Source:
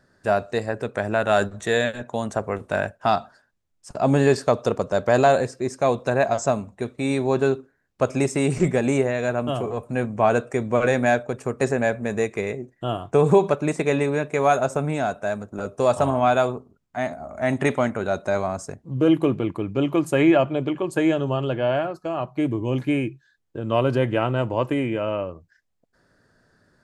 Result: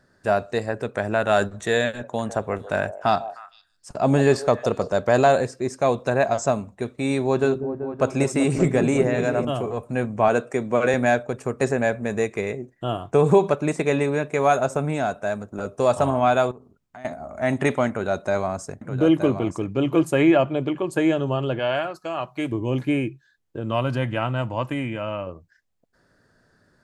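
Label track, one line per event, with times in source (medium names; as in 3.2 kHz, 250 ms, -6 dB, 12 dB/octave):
1.880000	4.920000	repeats whose band climbs or falls 153 ms, band-pass from 580 Hz, each repeat 1.4 oct, level -11.5 dB
7.240000	9.450000	delay with an opening low-pass 192 ms, low-pass from 400 Hz, each repeat up 1 oct, level -6 dB
10.280000	10.940000	high-pass 140 Hz
16.510000	17.050000	compression 8:1, threshold -38 dBFS
17.890000	20.030000	delay 922 ms -8.5 dB
21.590000	22.520000	tilt shelf lows -6 dB, about 890 Hz
23.710000	25.270000	peaking EQ 410 Hz -11 dB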